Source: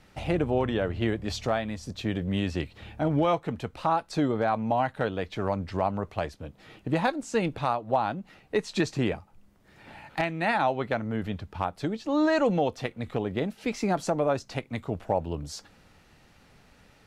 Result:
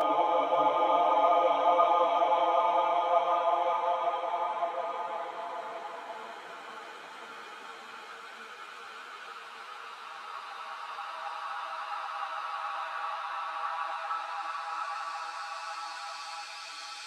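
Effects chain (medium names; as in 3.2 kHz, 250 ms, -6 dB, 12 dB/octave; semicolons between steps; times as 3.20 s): LFO high-pass sine 0.26 Hz 640–3900 Hz; Paulstretch 19×, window 0.50 s, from 3.20 s; three-phase chorus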